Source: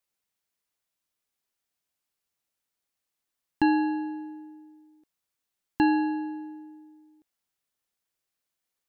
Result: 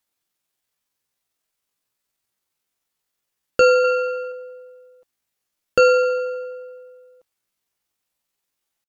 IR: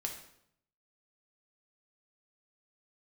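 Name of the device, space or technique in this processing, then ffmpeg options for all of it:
chipmunk voice: -filter_complex "[0:a]asetrate=72056,aresample=44100,atempo=0.612027,asettb=1/sr,asplit=3[a][b][c];[a]atrim=end=3.844[d];[b]atrim=start=3.84:end=4.32,asetpts=PTS-STARTPTS,afade=t=in:d=0.004:c=qsin,afade=t=out:st=0.476:d=0.004:c=qsin,equalizer=f=2.3k:w=0.67:g=7.5[e];[c]atrim=start=4.316[f];[d][e]acrossfade=d=0.004:c1=hsin:c2=qsin[g];[g][f]acrossfade=d=0.004:c1=qsin:c2=hsin,volume=8dB"

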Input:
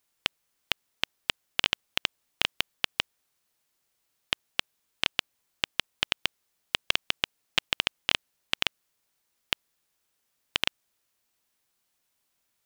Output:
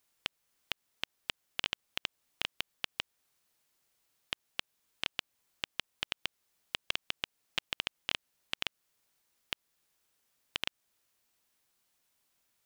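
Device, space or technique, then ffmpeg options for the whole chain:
stacked limiters: -af "alimiter=limit=-7dB:level=0:latency=1:release=91,alimiter=limit=-11.5dB:level=0:latency=1:release=295"

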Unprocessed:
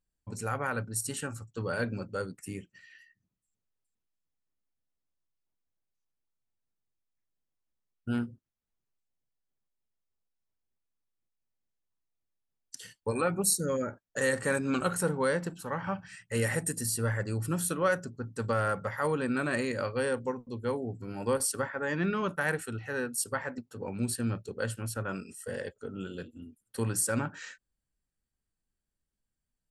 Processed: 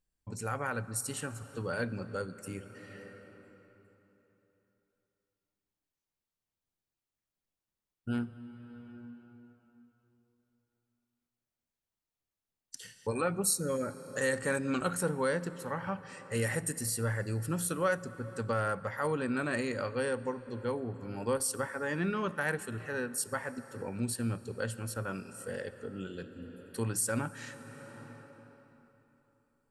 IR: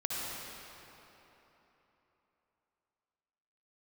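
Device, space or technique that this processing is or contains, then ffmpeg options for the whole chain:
ducked reverb: -filter_complex "[0:a]asplit=3[a][b][c];[1:a]atrim=start_sample=2205[d];[b][d]afir=irnorm=-1:irlink=0[e];[c]apad=whole_len=1309836[f];[e][f]sidechaincompress=threshold=-42dB:ratio=5:attack=5.9:release=589,volume=-6.5dB[g];[a][g]amix=inputs=2:normalize=0,volume=-3dB"

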